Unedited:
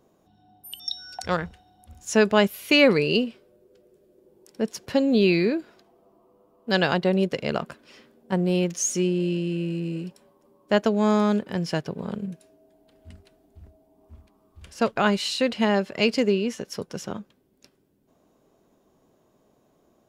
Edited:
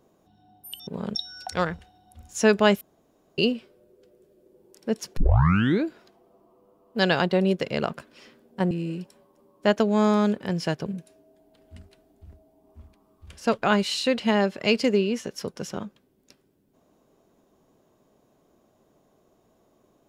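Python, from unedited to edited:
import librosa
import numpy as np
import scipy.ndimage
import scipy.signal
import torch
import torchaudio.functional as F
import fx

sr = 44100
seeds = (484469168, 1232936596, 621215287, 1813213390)

y = fx.edit(x, sr, fx.room_tone_fill(start_s=2.53, length_s=0.57),
    fx.tape_start(start_s=4.89, length_s=0.67),
    fx.cut(start_s=8.43, length_s=1.34),
    fx.move(start_s=11.92, length_s=0.28, to_s=0.87), tone=tone)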